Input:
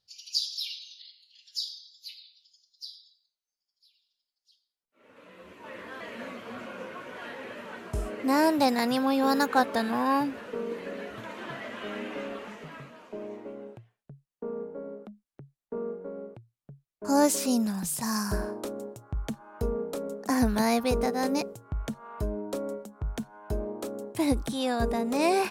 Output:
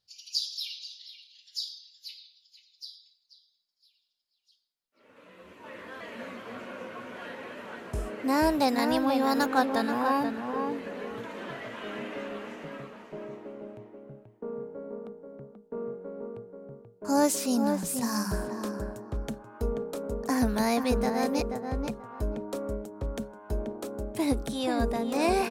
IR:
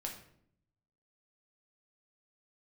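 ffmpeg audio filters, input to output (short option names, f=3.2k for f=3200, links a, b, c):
-filter_complex "[0:a]asplit=2[a][b];[b]adelay=483,lowpass=f=1.7k:p=1,volume=-5dB,asplit=2[c][d];[d]adelay=483,lowpass=f=1.7k:p=1,volume=0.23,asplit=2[e][f];[f]adelay=483,lowpass=f=1.7k:p=1,volume=0.23[g];[a][c][e][g]amix=inputs=4:normalize=0,volume=-1.5dB"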